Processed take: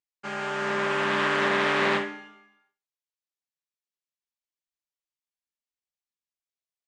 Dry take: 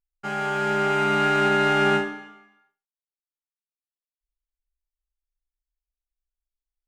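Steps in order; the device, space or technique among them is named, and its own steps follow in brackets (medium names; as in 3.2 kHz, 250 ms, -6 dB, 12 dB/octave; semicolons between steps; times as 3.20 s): full-range speaker at full volume (loudspeaker Doppler distortion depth 0.45 ms; cabinet simulation 220–8200 Hz, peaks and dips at 270 Hz -5 dB, 430 Hz -4 dB, 750 Hz -7 dB, 1.4 kHz -7 dB)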